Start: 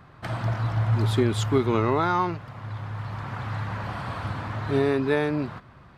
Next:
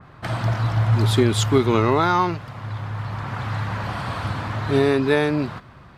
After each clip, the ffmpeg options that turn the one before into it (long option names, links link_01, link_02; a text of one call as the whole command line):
ffmpeg -i in.wav -af "adynamicequalizer=threshold=0.00891:dfrequency=2700:dqfactor=0.7:tfrequency=2700:tqfactor=0.7:attack=5:release=100:ratio=0.375:range=2.5:mode=boostabove:tftype=highshelf,volume=4.5dB" out.wav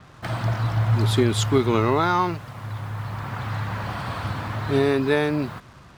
ffmpeg -i in.wav -af "acrusher=bits=7:mix=0:aa=0.5,volume=-2dB" out.wav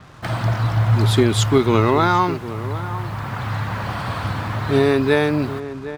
ffmpeg -i in.wav -filter_complex "[0:a]asplit=2[link_01][link_02];[link_02]adelay=758,volume=-13dB,highshelf=frequency=4000:gain=-17.1[link_03];[link_01][link_03]amix=inputs=2:normalize=0,volume=4dB" out.wav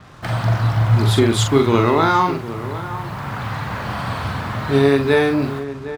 ffmpeg -i in.wav -filter_complex "[0:a]asplit=2[link_01][link_02];[link_02]adelay=43,volume=-5.5dB[link_03];[link_01][link_03]amix=inputs=2:normalize=0" out.wav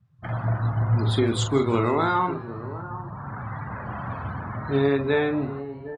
ffmpeg -i in.wav -filter_complex "[0:a]afftdn=noise_reduction=30:noise_floor=-29,asplit=5[link_01][link_02][link_03][link_04][link_05];[link_02]adelay=159,afreqshift=130,volume=-22.5dB[link_06];[link_03]adelay=318,afreqshift=260,volume=-26.9dB[link_07];[link_04]adelay=477,afreqshift=390,volume=-31.4dB[link_08];[link_05]adelay=636,afreqshift=520,volume=-35.8dB[link_09];[link_01][link_06][link_07][link_08][link_09]amix=inputs=5:normalize=0,volume=-7dB" out.wav